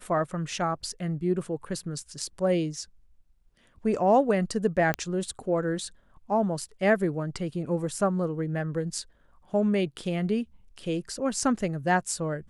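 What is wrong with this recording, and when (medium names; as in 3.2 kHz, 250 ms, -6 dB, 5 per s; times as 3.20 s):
4.94 s: pop -12 dBFS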